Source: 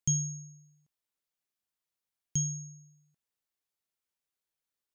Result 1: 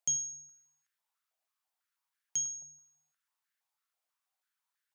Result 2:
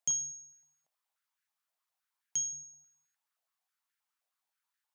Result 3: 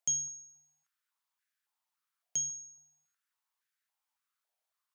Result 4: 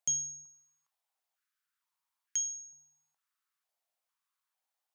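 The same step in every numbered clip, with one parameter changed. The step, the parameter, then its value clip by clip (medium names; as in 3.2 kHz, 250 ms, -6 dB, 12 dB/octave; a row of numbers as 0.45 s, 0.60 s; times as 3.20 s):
step-sequenced high-pass, rate: 6.1 Hz, 9.5 Hz, 3.6 Hz, 2.2 Hz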